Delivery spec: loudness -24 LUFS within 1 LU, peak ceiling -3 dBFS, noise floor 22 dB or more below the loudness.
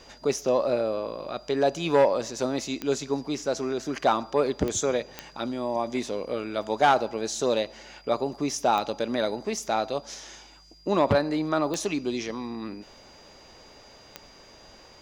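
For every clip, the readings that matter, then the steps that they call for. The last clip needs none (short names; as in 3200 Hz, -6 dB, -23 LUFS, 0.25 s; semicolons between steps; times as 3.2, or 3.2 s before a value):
clicks 6; steady tone 4800 Hz; tone level -54 dBFS; loudness -27.0 LUFS; peak -9.5 dBFS; loudness target -24.0 LUFS
-> de-click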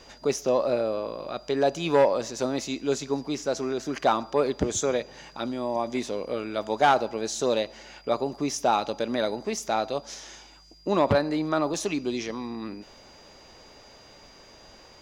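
clicks 0; steady tone 4800 Hz; tone level -54 dBFS
-> notch 4800 Hz, Q 30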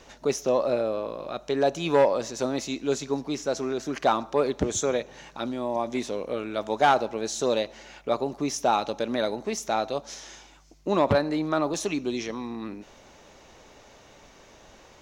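steady tone none; loudness -27.0 LUFS; peak -9.5 dBFS; loudness target -24.0 LUFS
-> gain +3 dB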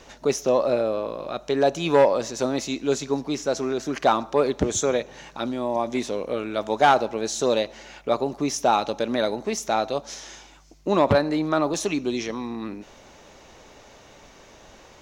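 loudness -24.0 LUFS; peak -6.5 dBFS; noise floor -50 dBFS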